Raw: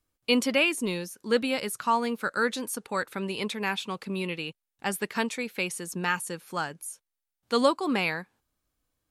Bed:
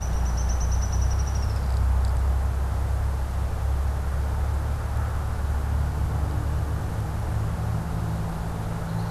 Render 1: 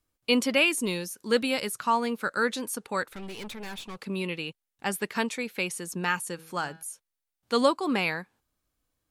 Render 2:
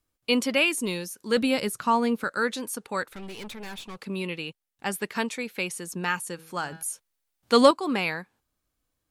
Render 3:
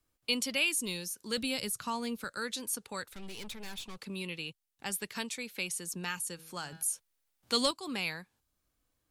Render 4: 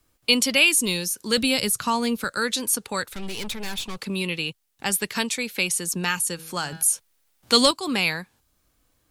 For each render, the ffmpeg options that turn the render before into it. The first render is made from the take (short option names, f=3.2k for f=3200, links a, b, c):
-filter_complex "[0:a]asettb=1/sr,asplit=3[a][b][c];[a]atrim=end=0.564[d];[b]atrim=start=0.56:end=1.68,asetpts=PTS-STARTPTS,afade=t=in:d=0.004:c=qsin,afade=t=out:st=1.116:d=0.004:c=qsin,highshelf=f=4k:g=5[e];[c]atrim=start=1.676[f];[d][e]acrossfade=d=0.004:c1=hsin:c2=qsin[g];[g][f]acrossfade=d=0.004:c1=qsin:c2=hsin,asettb=1/sr,asplit=3[h][i][j];[h]atrim=end=3.084[k];[i]atrim=start=3.08:end=3.99,asetpts=PTS-STARTPTS,afade=t=in:d=0.004:c=qsin,afade=t=out:st=0.906:d=0.004:c=qsin,aeval=exprs='(tanh(63.1*val(0)+0.55)-tanh(0.55))/63.1':c=same[l];[j]atrim=start=3.986[m];[k][l]acrossfade=d=0.004:c1=hsin:c2=qsin[n];[n][m]acrossfade=d=0.004:c1=qsin:c2=hsin,asettb=1/sr,asplit=3[o][p][q];[o]atrim=end=6.344[r];[p]atrim=start=6.34:end=6.83,asetpts=PTS-STARTPTS,afade=t=in:d=0.004:c=qsin,afade=t=out:st=0.486:d=0.004:c=qsin,bandreject=f=161.7:t=h:w=4,bandreject=f=323.4:t=h:w=4,bandreject=f=485.1:t=h:w=4,bandreject=f=646.8:t=h:w=4,bandreject=f=808.5:t=h:w=4,bandreject=f=970.2:t=h:w=4,bandreject=f=1.1319k:t=h:w=4,bandreject=f=1.2936k:t=h:w=4,bandreject=f=1.4553k:t=h:w=4,bandreject=f=1.617k:t=h:w=4,bandreject=f=1.7787k:t=h:w=4,bandreject=f=1.9404k:t=h:w=4,bandreject=f=2.1021k:t=h:w=4,bandreject=f=2.2638k:t=h:w=4,bandreject=f=2.4255k:t=h:w=4,bandreject=f=2.5872k:t=h:w=4,bandreject=f=2.7489k:t=h:w=4,bandreject=f=2.9106k:t=h:w=4,bandreject=f=3.0723k:t=h:w=4,bandreject=f=3.234k:t=h:w=4,bandreject=f=3.3957k:t=h:w=4,bandreject=f=3.5574k:t=h:w=4,bandreject=f=3.7191k:t=h:w=4,bandreject=f=3.8808k:t=h:w=4,bandreject=f=4.0425k:t=h:w=4,bandreject=f=4.2042k:t=h:w=4,bandreject=f=4.3659k:t=h:w=4,bandreject=f=4.5276k:t=h:w=4,bandreject=f=4.6893k:t=h:w=4,bandreject=f=4.851k:t=h:w=4,bandreject=f=5.0127k:t=h:w=4,bandreject=f=5.1744k:t=h:w=4,bandreject=f=5.3361k:t=h:w=4[s];[q]atrim=start=6.826[t];[r][s]acrossfade=d=0.004:c1=hsin:c2=qsin[u];[u][t]acrossfade=d=0.004:c1=qsin:c2=hsin"
-filter_complex "[0:a]asettb=1/sr,asplit=3[a][b][c];[a]atrim=end=1.374[d];[b]atrim=start=1.37:end=2.24,asetpts=PTS-STARTPTS,afade=t=in:d=0.004:c=qsin,afade=t=out:st=0.866:d=0.004:c=qsin,lowshelf=f=480:g=7.5[e];[c]atrim=start=2.236[f];[d][e]acrossfade=d=0.004:c1=hsin:c2=qsin[g];[g][f]acrossfade=d=0.004:c1=qsin:c2=hsin,asettb=1/sr,asplit=3[h][i][j];[h]atrim=end=6.724[k];[i]atrim=start=6.72:end=7.71,asetpts=PTS-STARTPTS,afade=t=in:d=0.004:c=qsin,afade=t=out:st=0.986:d=0.004:c=qsin,acontrast=60[l];[j]atrim=start=7.706[m];[k][l]acrossfade=d=0.004:c1=hsin:c2=qsin[n];[n][m]acrossfade=d=0.004:c1=qsin:c2=hsin"
-filter_complex "[0:a]acrossover=split=120|3000[a][b][c];[b]acompressor=threshold=-59dB:ratio=1.5[d];[a][d][c]amix=inputs=3:normalize=0"
-af "volume=12dB,alimiter=limit=-3dB:level=0:latency=1"